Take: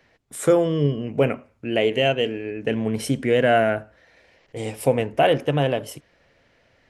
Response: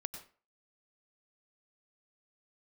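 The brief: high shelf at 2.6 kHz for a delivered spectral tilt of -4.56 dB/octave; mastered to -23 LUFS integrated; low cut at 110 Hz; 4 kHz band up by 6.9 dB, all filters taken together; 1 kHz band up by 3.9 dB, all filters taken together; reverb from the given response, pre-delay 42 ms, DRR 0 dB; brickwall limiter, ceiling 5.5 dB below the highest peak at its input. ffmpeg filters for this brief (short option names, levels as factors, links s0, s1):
-filter_complex "[0:a]highpass=110,equalizer=f=1000:t=o:g=6,highshelf=f=2600:g=4.5,equalizer=f=4000:t=o:g=6.5,alimiter=limit=0.398:level=0:latency=1,asplit=2[s0][s1];[1:a]atrim=start_sample=2205,adelay=42[s2];[s1][s2]afir=irnorm=-1:irlink=0,volume=1.19[s3];[s0][s3]amix=inputs=2:normalize=0,volume=0.596"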